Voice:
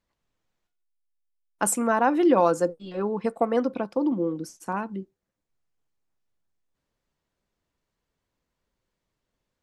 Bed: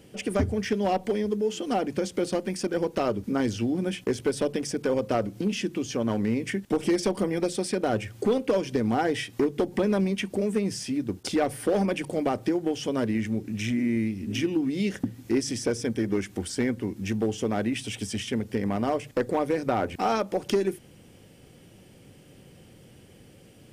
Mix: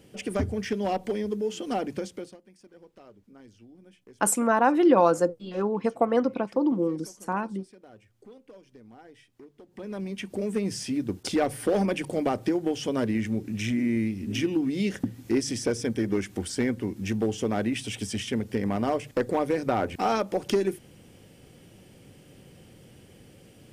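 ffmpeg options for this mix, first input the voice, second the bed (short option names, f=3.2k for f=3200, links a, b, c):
-filter_complex "[0:a]adelay=2600,volume=0.5dB[a];[1:a]volume=23dB,afade=t=out:st=1.88:d=0.49:silence=0.0707946,afade=t=in:st=9.67:d=1.13:silence=0.0530884[b];[a][b]amix=inputs=2:normalize=0"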